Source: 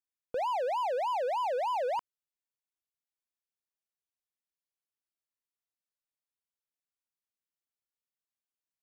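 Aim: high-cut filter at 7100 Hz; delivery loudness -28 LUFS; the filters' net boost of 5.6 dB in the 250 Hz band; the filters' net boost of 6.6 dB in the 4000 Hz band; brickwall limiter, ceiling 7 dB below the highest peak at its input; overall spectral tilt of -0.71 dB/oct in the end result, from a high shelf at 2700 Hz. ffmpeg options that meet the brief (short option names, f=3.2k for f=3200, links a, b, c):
-af "lowpass=7.1k,equalizer=f=250:t=o:g=7.5,highshelf=f=2.7k:g=6.5,equalizer=f=4k:t=o:g=4.5,volume=7.5dB,alimiter=limit=-22dB:level=0:latency=1"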